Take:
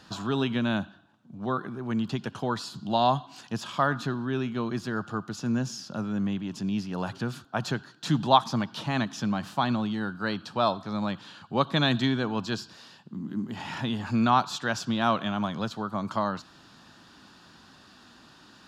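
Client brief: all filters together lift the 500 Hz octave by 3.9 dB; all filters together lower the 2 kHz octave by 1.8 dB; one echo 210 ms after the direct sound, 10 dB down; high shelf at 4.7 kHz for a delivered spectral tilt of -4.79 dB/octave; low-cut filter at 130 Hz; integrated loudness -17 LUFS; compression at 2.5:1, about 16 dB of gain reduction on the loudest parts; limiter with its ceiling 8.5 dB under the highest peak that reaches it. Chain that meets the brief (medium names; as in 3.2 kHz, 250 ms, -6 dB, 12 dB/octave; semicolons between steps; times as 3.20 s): high-pass 130 Hz; peaking EQ 500 Hz +5.5 dB; peaking EQ 2 kHz -4 dB; treble shelf 4.7 kHz +6 dB; compression 2.5:1, threshold -37 dBFS; peak limiter -27.5 dBFS; delay 210 ms -10 dB; trim +21.5 dB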